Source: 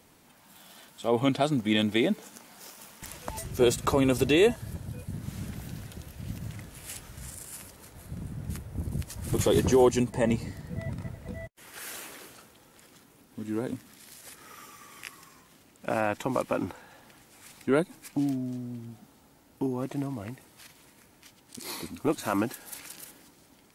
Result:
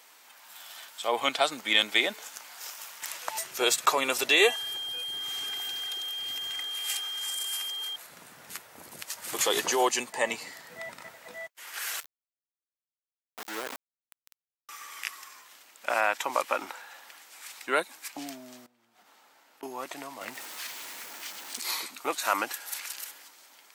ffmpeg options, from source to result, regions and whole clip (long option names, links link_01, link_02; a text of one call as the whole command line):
ffmpeg -i in.wav -filter_complex "[0:a]asettb=1/sr,asplit=3[link_01][link_02][link_03];[link_01]atrim=end=4.404[link_04];[link_02]atrim=start=4.4:end=7.96,asetpts=PTS-STARTPTS,afade=type=in:duration=0.004:curve=qsin,afade=type=out:start_time=3.556:duration=0.004:curve=qsin,aecho=1:1:2.5:0.67,atrim=end_sample=156996,aeval=exprs='val(0)+0.01*sin(2*PI*3200*n/s)':channel_layout=same[link_05];[link_03]atrim=start=7.956[link_06];[link_04][link_05]acrossfade=duration=0.004:curve1=hsin:curve2=qsin[link_07];[link_07][link_06]acrossfade=duration=0.004:curve1=qsin:curve2=hsin,asettb=1/sr,asplit=3[link_08][link_09][link_10];[link_08]atrim=end=12.004[link_11];[link_09]atrim=start=12:end=14.69,asetpts=PTS-STARTPTS,afade=type=in:duration=0.004:curve=qsin,afade=type=out:start_time=2.686:duration=0.004:curve=qsin,equalizer=frequency=3200:width=2.4:gain=-12.5,aeval=exprs='val(0)*gte(abs(val(0)),0.0188)':channel_layout=same[link_12];[link_10]atrim=start=14.686[link_13];[link_11][link_12]acrossfade=duration=0.004:curve1=hsin:curve2=qsin[link_14];[link_14][link_13]acrossfade=duration=0.004:curve1=qsin:curve2=hsin,asettb=1/sr,asplit=3[link_15][link_16][link_17];[link_15]atrim=end=18.664[link_18];[link_16]atrim=start=18.66:end=19.63,asetpts=PTS-STARTPTS,afade=type=in:duration=0.004:curve=qsin,afade=type=out:start_time=0.966:duration=0.004:curve=qsin,highshelf=frequency=4600:gain=-9.5,acompressor=threshold=-51dB:ratio=12:attack=3.2:release=140:knee=1:detection=peak[link_19];[link_17]atrim=start=19.626[link_20];[link_18][link_19]acrossfade=duration=0.004:curve1=hsin:curve2=qsin[link_21];[link_21][link_20]acrossfade=duration=0.004:curve1=qsin:curve2=hsin,asettb=1/sr,asplit=3[link_22][link_23][link_24];[link_22]atrim=end=20.214[link_25];[link_23]atrim=start=20.21:end=21.61,asetpts=PTS-STARTPTS,afade=type=in:duration=0.004:curve=qsin,afade=type=out:start_time=1.396:duration=0.004:curve=qsin,aeval=exprs='val(0)+0.5*0.00668*sgn(val(0))':channel_layout=same,equalizer=frequency=220:width=0.73:gain=7[link_26];[link_24]atrim=start=21.606[link_27];[link_25][link_26]acrossfade=duration=0.004:curve1=hsin:curve2=qsin[link_28];[link_28][link_27]acrossfade=duration=0.004:curve1=qsin:curve2=hsin,highpass=970,equalizer=frequency=10000:width=4.4:gain=-7,volume=7.5dB" out.wav